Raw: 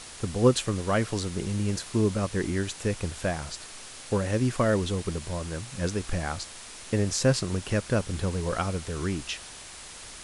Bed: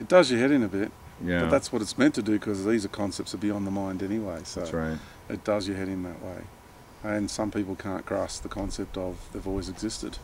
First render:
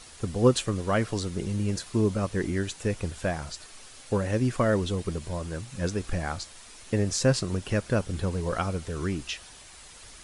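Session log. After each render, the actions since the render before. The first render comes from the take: noise reduction 7 dB, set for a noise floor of -44 dBFS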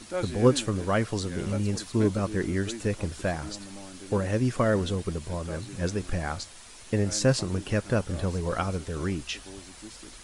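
add bed -14 dB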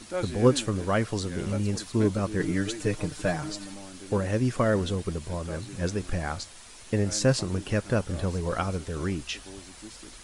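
2.39–3.74 s: comb 6.6 ms, depth 69%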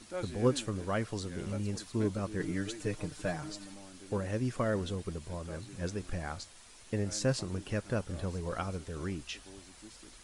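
trim -7.5 dB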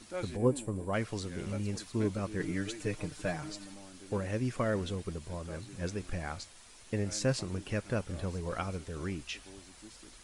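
dynamic bell 2.3 kHz, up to +4 dB, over -58 dBFS, Q 3.1; 0.36–0.93 s: time-frequency box 1.1–7.1 kHz -12 dB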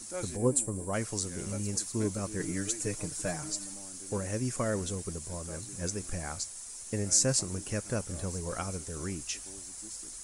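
resonant high shelf 5 kHz +13 dB, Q 1.5

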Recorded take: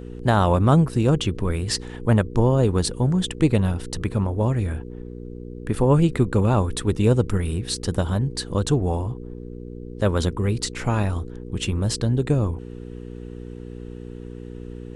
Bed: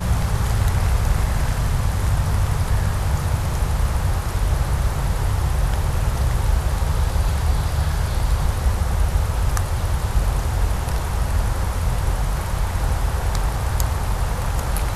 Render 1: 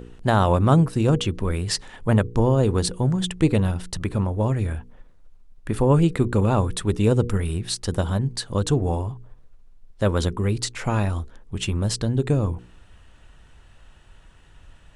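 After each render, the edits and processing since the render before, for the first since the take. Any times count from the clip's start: de-hum 60 Hz, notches 8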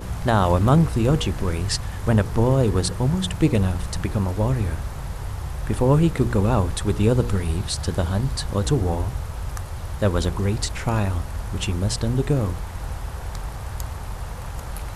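add bed -9.5 dB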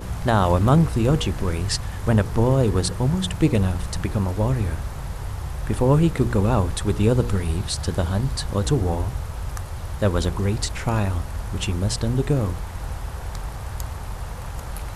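no audible change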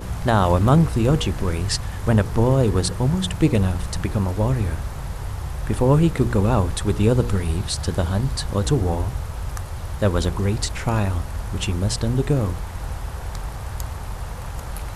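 trim +1 dB

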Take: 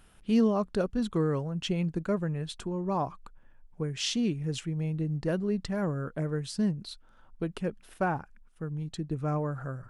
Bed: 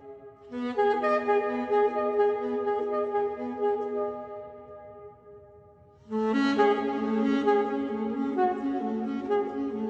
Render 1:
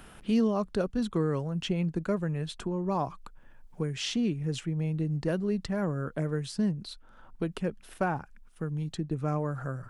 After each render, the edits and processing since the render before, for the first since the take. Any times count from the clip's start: three bands compressed up and down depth 40%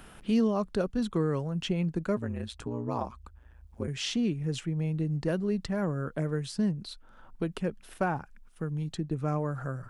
2.16–3.88 s: ring modulator 58 Hz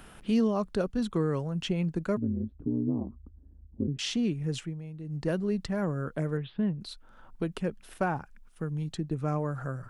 2.17–3.99 s: resonant low-pass 280 Hz, resonance Q 2.8; 4.57–5.27 s: dip -11 dB, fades 0.24 s; 6.37–6.81 s: Chebyshev low-pass 3.6 kHz, order 6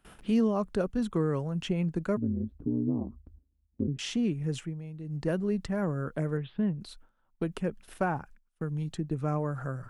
gate with hold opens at -40 dBFS; dynamic bell 4.3 kHz, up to -6 dB, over -55 dBFS, Q 1.4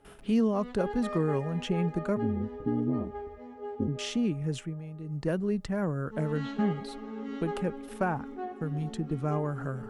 add bed -12.5 dB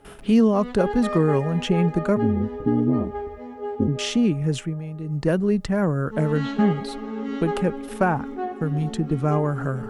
trim +8.5 dB

